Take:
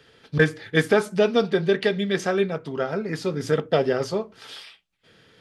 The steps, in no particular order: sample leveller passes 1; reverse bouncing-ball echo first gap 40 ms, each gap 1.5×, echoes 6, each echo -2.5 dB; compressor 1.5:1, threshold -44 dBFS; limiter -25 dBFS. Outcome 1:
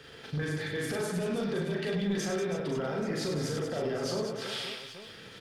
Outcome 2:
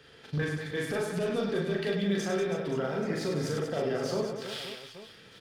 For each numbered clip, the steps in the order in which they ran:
limiter > compressor > reverse bouncing-ball echo > sample leveller; sample leveller > compressor > limiter > reverse bouncing-ball echo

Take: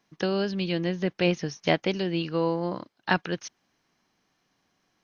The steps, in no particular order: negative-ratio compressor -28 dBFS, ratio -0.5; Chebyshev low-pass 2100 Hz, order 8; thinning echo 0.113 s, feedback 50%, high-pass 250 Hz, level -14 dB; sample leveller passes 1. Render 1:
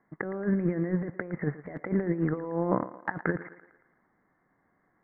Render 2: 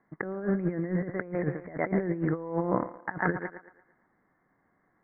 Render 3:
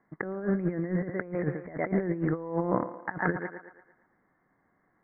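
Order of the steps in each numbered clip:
sample leveller > Chebyshev low-pass > negative-ratio compressor > thinning echo; thinning echo > sample leveller > negative-ratio compressor > Chebyshev low-pass; sample leveller > thinning echo > negative-ratio compressor > Chebyshev low-pass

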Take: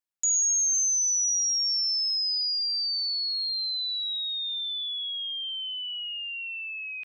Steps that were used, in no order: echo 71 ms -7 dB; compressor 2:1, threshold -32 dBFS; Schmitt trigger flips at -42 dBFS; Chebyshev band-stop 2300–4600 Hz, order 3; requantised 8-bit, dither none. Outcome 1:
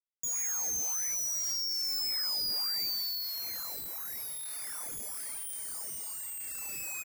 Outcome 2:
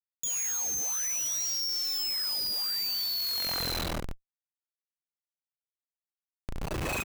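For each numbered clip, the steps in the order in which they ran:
echo > compressor > Schmitt trigger > Chebyshev band-stop > requantised; echo > requantised > Chebyshev band-stop > Schmitt trigger > compressor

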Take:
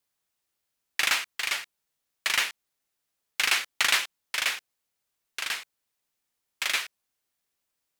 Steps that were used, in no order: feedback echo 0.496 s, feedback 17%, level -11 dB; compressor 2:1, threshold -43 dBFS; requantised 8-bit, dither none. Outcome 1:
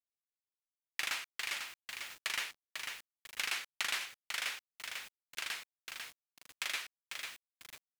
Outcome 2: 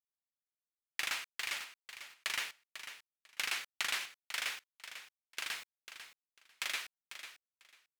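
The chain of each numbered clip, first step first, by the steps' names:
feedback echo > requantised > compressor; requantised > compressor > feedback echo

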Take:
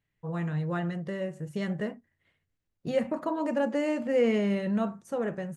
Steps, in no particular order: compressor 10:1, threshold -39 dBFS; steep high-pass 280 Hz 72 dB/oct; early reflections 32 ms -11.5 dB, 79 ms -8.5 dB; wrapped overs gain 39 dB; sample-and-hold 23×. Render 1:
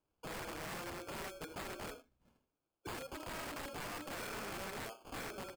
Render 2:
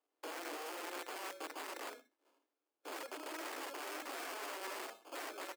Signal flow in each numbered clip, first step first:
steep high-pass > compressor > sample-and-hold > early reflections > wrapped overs; sample-and-hold > compressor > early reflections > wrapped overs > steep high-pass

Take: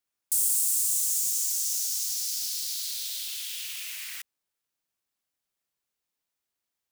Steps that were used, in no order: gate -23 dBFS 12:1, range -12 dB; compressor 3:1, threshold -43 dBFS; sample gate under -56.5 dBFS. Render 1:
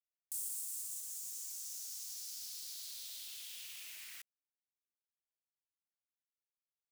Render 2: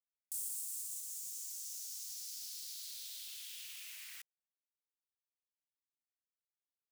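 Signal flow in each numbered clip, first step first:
gate > compressor > sample gate; sample gate > gate > compressor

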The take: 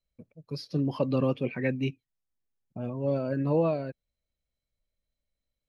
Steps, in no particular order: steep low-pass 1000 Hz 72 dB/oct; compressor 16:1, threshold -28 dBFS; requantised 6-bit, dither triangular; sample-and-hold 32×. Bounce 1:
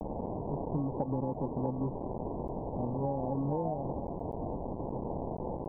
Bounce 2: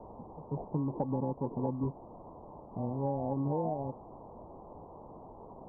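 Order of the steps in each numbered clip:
requantised > sample-and-hold > steep low-pass > compressor; sample-and-hold > requantised > steep low-pass > compressor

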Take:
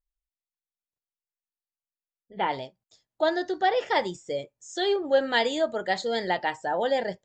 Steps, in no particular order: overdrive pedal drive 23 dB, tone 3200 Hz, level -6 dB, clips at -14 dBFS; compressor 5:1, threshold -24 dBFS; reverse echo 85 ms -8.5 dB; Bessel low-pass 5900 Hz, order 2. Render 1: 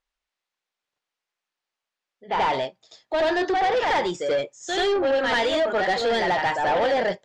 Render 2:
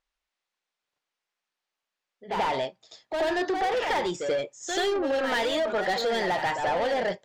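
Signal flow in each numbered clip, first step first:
reverse echo > compressor > overdrive pedal > Bessel low-pass; Bessel low-pass > overdrive pedal > reverse echo > compressor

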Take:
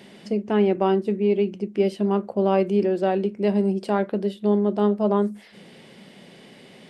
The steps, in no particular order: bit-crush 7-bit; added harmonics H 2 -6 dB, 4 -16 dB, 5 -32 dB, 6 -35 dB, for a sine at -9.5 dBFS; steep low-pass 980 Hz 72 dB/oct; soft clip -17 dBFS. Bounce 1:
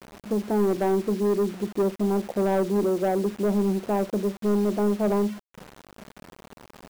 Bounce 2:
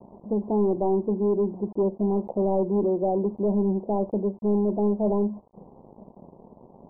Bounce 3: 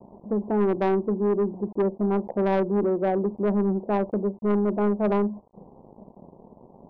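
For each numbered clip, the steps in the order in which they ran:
steep low-pass > added harmonics > soft clip > bit-crush; added harmonics > bit-crush > soft clip > steep low-pass; added harmonics > bit-crush > steep low-pass > soft clip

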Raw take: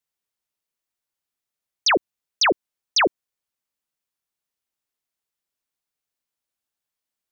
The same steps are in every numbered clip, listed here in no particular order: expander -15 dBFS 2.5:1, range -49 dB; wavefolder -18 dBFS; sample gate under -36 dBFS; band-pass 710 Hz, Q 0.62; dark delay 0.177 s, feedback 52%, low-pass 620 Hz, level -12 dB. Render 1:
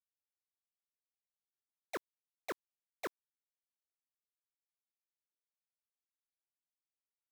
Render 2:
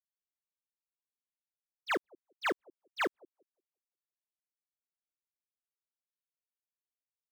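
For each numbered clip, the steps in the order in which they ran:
wavefolder > band-pass > expander > dark delay > sample gate; band-pass > sample gate > dark delay > wavefolder > expander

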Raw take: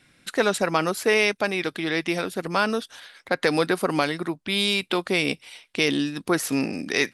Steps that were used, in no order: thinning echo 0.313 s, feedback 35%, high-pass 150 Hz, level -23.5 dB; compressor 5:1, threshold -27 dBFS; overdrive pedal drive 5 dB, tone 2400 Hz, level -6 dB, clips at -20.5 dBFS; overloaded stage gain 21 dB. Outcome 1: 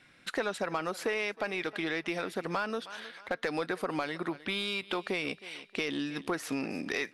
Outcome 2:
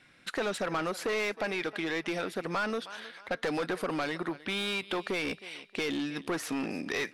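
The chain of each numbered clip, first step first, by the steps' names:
thinning echo > compressor > overdrive pedal > overloaded stage; thinning echo > overloaded stage > compressor > overdrive pedal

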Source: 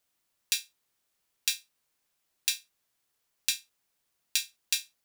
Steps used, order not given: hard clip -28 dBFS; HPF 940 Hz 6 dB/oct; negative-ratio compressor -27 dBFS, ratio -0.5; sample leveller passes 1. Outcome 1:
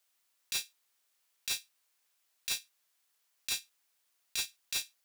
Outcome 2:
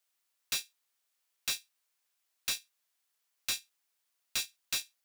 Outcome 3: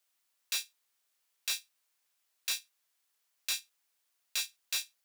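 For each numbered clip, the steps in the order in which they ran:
HPF > sample leveller > negative-ratio compressor > hard clip; HPF > sample leveller > hard clip > negative-ratio compressor; negative-ratio compressor > sample leveller > hard clip > HPF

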